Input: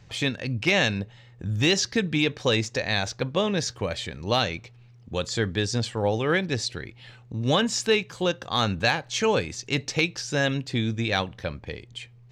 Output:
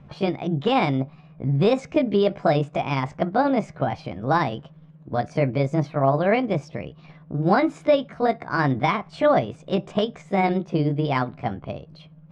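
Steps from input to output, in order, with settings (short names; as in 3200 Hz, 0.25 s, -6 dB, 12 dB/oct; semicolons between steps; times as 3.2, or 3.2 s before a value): delay-line pitch shifter +5 st; LPF 1500 Hz 12 dB/oct; gain +6 dB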